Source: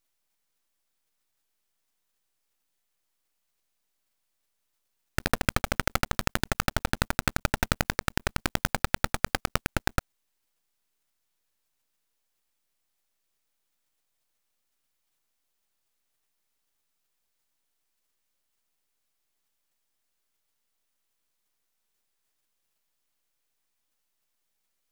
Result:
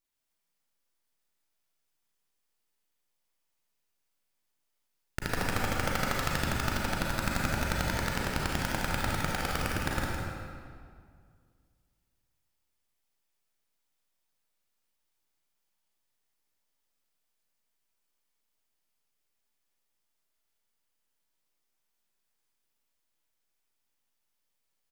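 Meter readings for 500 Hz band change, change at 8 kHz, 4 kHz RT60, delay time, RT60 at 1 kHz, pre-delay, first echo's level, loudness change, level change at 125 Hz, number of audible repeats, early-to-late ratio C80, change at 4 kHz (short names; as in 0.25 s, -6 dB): -1.5 dB, -3.5 dB, 1.4 s, 0.162 s, 2.0 s, 33 ms, -6.5 dB, -2.5 dB, -1.5 dB, 1, -1.5 dB, -3.0 dB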